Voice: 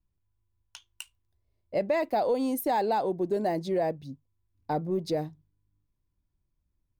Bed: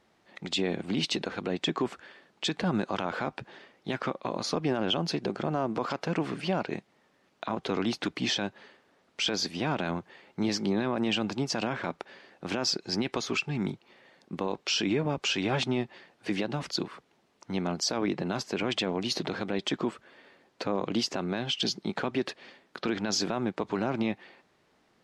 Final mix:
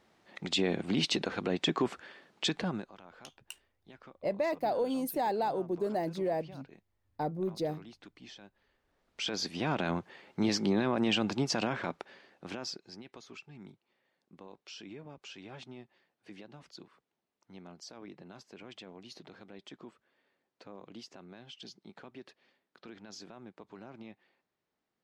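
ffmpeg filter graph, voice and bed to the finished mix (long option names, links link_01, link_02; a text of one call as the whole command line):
ffmpeg -i stem1.wav -i stem2.wav -filter_complex "[0:a]adelay=2500,volume=-4.5dB[link_01];[1:a]volume=21dB,afade=type=out:start_time=2.45:duration=0.46:silence=0.0841395,afade=type=in:start_time=8.66:duration=1.28:silence=0.0841395,afade=type=out:start_time=11.5:duration=1.46:silence=0.112202[link_02];[link_01][link_02]amix=inputs=2:normalize=0" out.wav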